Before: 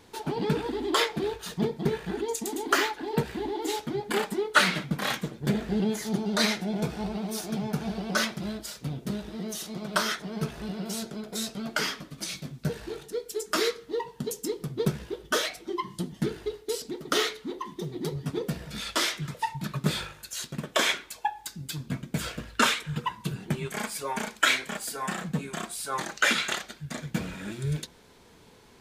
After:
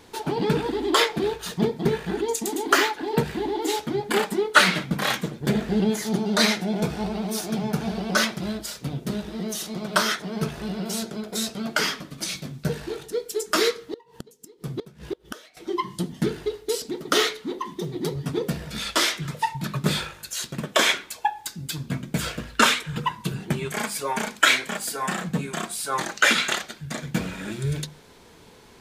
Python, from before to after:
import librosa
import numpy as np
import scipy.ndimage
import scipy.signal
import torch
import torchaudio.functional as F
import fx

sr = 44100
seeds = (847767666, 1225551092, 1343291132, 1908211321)

y = fx.hum_notches(x, sr, base_hz=50, count=5)
y = fx.gate_flip(y, sr, shuts_db=-23.0, range_db=-25, at=(13.8, 15.57))
y = F.gain(torch.from_numpy(y), 5.0).numpy()